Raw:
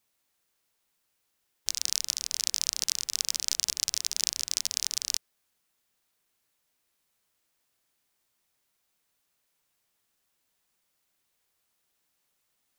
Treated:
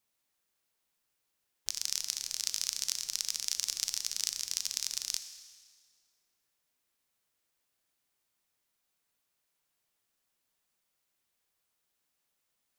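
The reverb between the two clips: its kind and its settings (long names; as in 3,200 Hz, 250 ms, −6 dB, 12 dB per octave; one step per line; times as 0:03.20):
four-comb reverb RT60 1.7 s, combs from 27 ms, DRR 9.5 dB
level −5 dB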